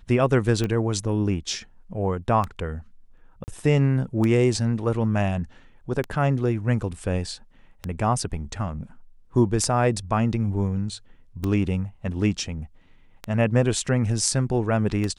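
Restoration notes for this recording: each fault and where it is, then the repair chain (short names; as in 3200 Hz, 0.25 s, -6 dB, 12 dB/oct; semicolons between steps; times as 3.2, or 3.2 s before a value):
tick 33 1/3 rpm -14 dBFS
3.44–3.48 gap 39 ms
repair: de-click; interpolate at 3.44, 39 ms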